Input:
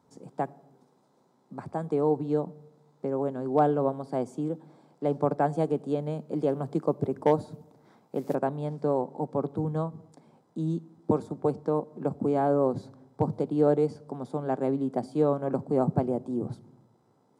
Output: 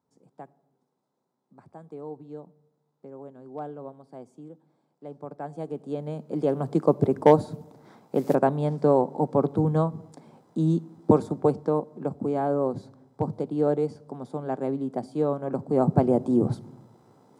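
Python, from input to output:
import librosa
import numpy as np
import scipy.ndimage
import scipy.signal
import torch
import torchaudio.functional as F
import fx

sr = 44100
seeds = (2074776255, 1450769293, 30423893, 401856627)

y = fx.gain(x, sr, db=fx.line((5.26, -13.5), (5.97, -2.5), (6.94, 6.5), (11.25, 6.5), (12.14, -1.0), (15.5, -1.0), (16.26, 9.0)))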